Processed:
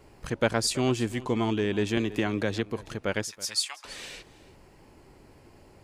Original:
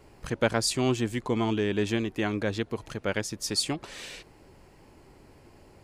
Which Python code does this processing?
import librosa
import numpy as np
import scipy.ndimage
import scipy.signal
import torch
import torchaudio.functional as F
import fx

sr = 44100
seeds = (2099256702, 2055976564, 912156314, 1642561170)

y = fx.highpass(x, sr, hz=950.0, slope=24, at=(3.24, 3.85))
y = y + 10.0 ** (-19.5 / 20.0) * np.pad(y, (int(327 * sr / 1000.0), 0))[:len(y)]
y = fx.band_squash(y, sr, depth_pct=100, at=(1.97, 2.66))